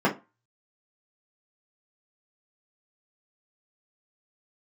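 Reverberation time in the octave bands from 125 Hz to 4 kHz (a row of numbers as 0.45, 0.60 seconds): 0.25, 0.25, 0.25, 0.30, 0.25, 0.20 seconds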